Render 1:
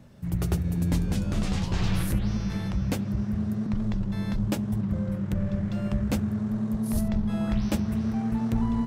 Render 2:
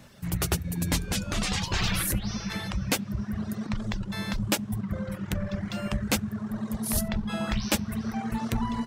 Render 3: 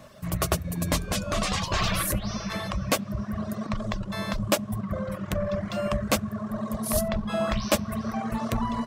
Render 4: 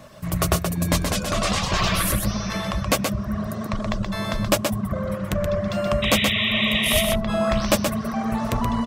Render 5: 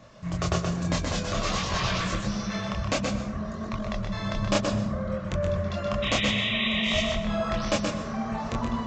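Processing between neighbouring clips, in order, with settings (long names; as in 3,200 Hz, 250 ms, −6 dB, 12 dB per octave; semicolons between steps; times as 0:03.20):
reverb reduction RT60 1.3 s; tilt shelving filter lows −6.5 dB, about 780 Hz; level +5 dB
hollow resonant body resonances 620/1,100 Hz, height 13 dB, ringing for 30 ms
sound drawn into the spectrogram noise, 0:06.02–0:07.03, 1,800–3,900 Hz −28 dBFS; single-tap delay 126 ms −5 dB; level +3.5 dB
multi-voice chorus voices 2, 0.55 Hz, delay 26 ms, depth 4.2 ms; dense smooth reverb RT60 0.97 s, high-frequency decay 0.5×, pre-delay 105 ms, DRR 8 dB; downsampling to 16,000 Hz; level −2.5 dB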